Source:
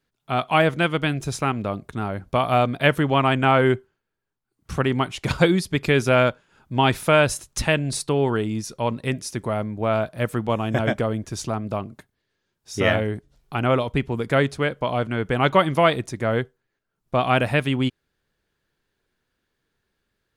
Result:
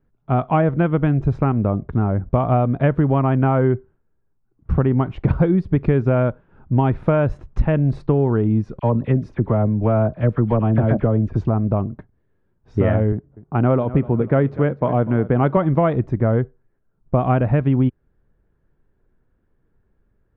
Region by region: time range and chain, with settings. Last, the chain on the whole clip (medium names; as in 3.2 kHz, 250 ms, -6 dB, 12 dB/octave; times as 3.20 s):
8.79–11.46 s: overload inside the chain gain 14.5 dB + phase dispersion lows, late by 41 ms, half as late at 1.4 kHz
13.12–15.57 s: level-controlled noise filter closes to 1.3 kHz, open at -15.5 dBFS + high-pass 120 Hz + feedback delay 246 ms, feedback 43%, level -18.5 dB
whole clip: low-pass 1.5 kHz 12 dB/octave; tilt EQ -3 dB/octave; compression, threshold -16 dBFS; trim +3.5 dB